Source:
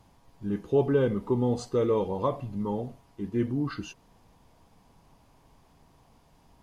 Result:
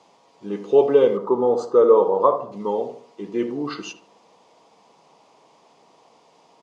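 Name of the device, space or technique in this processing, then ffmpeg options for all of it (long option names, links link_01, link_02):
car door speaker: -filter_complex "[0:a]highpass=360,highpass=86,equalizer=frequency=110:width_type=q:width=4:gain=-6,equalizer=frequency=270:width_type=q:width=4:gain=-4,equalizer=frequency=470:width_type=q:width=4:gain=4,equalizer=frequency=1600:width_type=q:width=4:gain=-9,lowpass=frequency=7500:width=0.5412,lowpass=frequency=7500:width=1.3066,asettb=1/sr,asplit=3[link_01][link_02][link_03];[link_01]atrim=end=1.174[link_04];[link_02]atrim=start=1.17:end=2.52,asetpts=PTS-STARTPTS,afade=type=in:duration=0.004:curve=qsin,afade=type=out:start_time=1.346:duration=0.004:curve=qsin,highshelf=frequency=1800:width_type=q:width=3:gain=-8.5[link_05];[link_03]atrim=start=2.516[link_06];[link_04][link_05]acrossfade=duration=0.004:curve1=hsin:curve2=qsin[link_07];[link_07][link_06]acrossfade=duration=0.004:curve1=qsin:curve2=hsin,asplit=2[link_08][link_09];[link_09]adelay=75,lowpass=frequency=1300:poles=1,volume=-9dB,asplit=2[link_10][link_11];[link_11]adelay=75,lowpass=frequency=1300:poles=1,volume=0.42,asplit=2[link_12][link_13];[link_13]adelay=75,lowpass=frequency=1300:poles=1,volume=0.42,asplit=2[link_14][link_15];[link_15]adelay=75,lowpass=frequency=1300:poles=1,volume=0.42,asplit=2[link_16][link_17];[link_17]adelay=75,lowpass=frequency=1300:poles=1,volume=0.42[link_18];[link_08][link_10][link_12][link_14][link_16][link_18]amix=inputs=6:normalize=0,volume=9dB"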